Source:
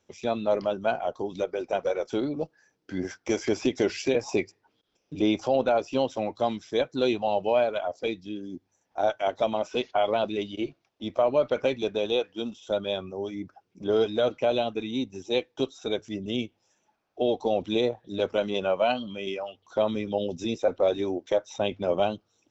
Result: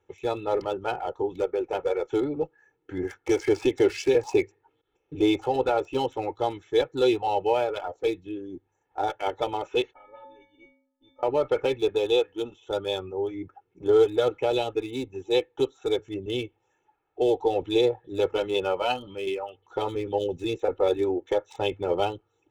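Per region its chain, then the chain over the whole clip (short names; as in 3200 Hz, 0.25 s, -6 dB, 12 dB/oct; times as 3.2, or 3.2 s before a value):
9.93–11.23 tilt -1.5 dB/oct + metallic resonator 260 Hz, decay 0.8 s, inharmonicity 0.03
whole clip: Wiener smoothing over 9 samples; notch 540 Hz, Q 12; comb 2.3 ms, depth 90%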